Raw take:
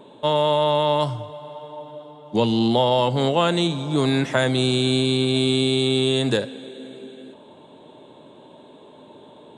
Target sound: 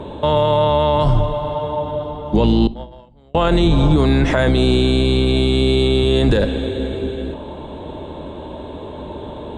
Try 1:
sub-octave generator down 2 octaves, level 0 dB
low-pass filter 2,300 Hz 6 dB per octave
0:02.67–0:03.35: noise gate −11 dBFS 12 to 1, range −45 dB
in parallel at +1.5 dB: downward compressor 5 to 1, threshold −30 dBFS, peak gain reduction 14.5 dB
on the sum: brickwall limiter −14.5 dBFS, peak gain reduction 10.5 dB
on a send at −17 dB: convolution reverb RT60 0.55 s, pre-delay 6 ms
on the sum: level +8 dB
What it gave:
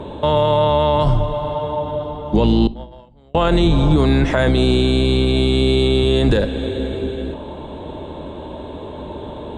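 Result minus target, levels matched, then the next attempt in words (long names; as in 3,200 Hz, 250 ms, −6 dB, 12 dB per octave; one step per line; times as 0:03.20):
downward compressor: peak gain reduction +8.5 dB
sub-octave generator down 2 octaves, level 0 dB
low-pass filter 2,300 Hz 6 dB per octave
0:02.67–0:03.35: noise gate −11 dBFS 12 to 1, range −45 dB
in parallel at +1.5 dB: downward compressor 5 to 1, threshold −19.5 dBFS, peak gain reduction 6 dB
on the sum: brickwall limiter −14.5 dBFS, peak gain reduction 13.5 dB
on a send at −17 dB: convolution reverb RT60 0.55 s, pre-delay 6 ms
on the sum: level +8 dB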